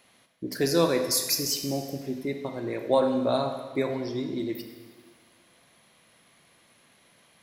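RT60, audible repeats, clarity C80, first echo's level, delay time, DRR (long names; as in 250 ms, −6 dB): 1.5 s, no echo audible, 8.5 dB, no echo audible, no echo audible, 5.0 dB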